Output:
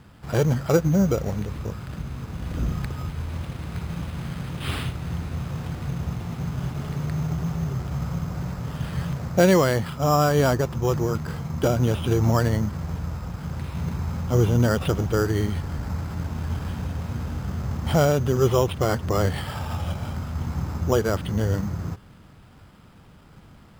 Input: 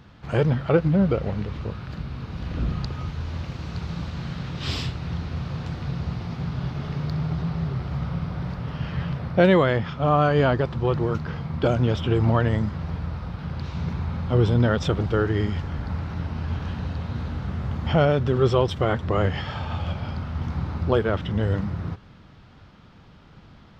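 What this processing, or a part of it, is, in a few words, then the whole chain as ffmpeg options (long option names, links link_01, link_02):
crushed at another speed: -af "asetrate=22050,aresample=44100,acrusher=samples=14:mix=1:aa=0.000001,asetrate=88200,aresample=44100,highshelf=frequency=5300:gain=-4"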